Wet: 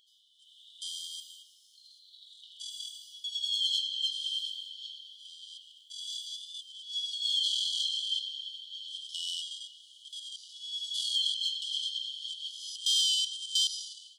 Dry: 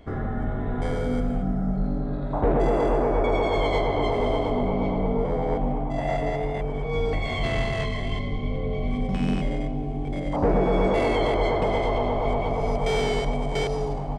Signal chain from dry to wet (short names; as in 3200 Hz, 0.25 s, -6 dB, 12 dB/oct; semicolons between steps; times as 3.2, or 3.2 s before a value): AGC gain up to 11 dB; brick-wall FIR high-pass 2900 Hz; gain +1 dB